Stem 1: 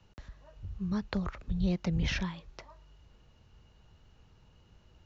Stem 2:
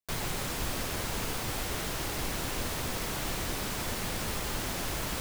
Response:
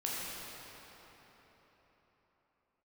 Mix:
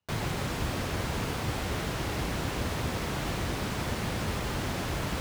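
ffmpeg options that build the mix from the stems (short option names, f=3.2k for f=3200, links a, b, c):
-filter_complex "[0:a]lowshelf=f=430:g=-11,volume=-18dB[a];[1:a]lowpass=f=3.3k:p=1,volume=2.5dB[b];[a][b]amix=inputs=2:normalize=0,highpass=68,lowshelf=f=150:g=7.5"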